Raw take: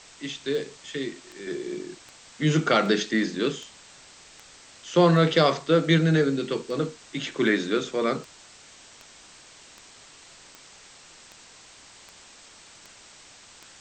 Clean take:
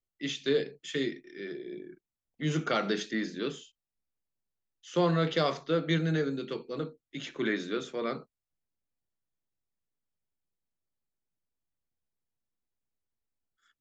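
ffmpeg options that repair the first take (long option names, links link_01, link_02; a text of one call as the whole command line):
ffmpeg -i in.wav -af "adeclick=threshold=4,afwtdn=0.005,asetnsamples=nb_out_samples=441:pad=0,asendcmd='1.47 volume volume -8dB',volume=0dB" out.wav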